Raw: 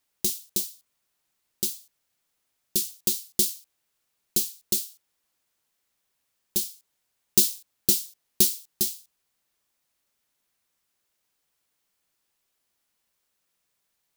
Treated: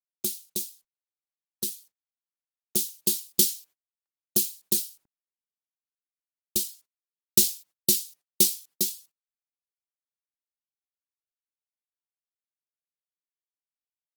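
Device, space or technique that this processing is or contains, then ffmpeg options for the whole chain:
video call: -af "highpass=110,dynaudnorm=f=790:g=7:m=11.5dB,agate=range=-53dB:threshold=-49dB:ratio=16:detection=peak,volume=-2dB" -ar 48000 -c:a libopus -b:a 20k

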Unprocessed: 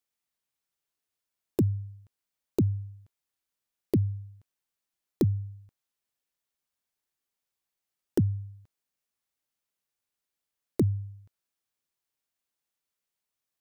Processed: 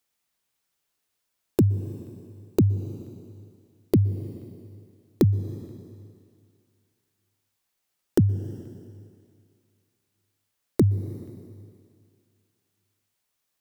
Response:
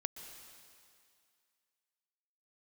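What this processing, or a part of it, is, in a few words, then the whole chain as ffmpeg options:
ducked reverb: -filter_complex "[0:a]asplit=3[a][b][c];[1:a]atrim=start_sample=2205[d];[b][d]afir=irnorm=-1:irlink=0[e];[c]apad=whole_len=599888[f];[e][f]sidechaincompress=threshold=-31dB:ratio=8:attack=5.8:release=287,volume=-0.5dB[g];[a][g]amix=inputs=2:normalize=0,volume=3.5dB"

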